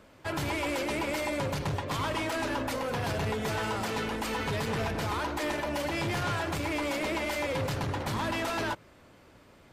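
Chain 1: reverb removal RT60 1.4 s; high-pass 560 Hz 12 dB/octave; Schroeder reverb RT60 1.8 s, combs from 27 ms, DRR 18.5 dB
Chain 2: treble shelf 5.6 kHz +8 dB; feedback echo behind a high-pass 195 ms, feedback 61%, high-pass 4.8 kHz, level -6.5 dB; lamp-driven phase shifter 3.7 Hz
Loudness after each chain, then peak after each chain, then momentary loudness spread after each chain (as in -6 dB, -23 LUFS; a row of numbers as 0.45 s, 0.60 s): -36.0 LUFS, -34.0 LUFS; -23.0 dBFS, -21.5 dBFS; 4 LU, 3 LU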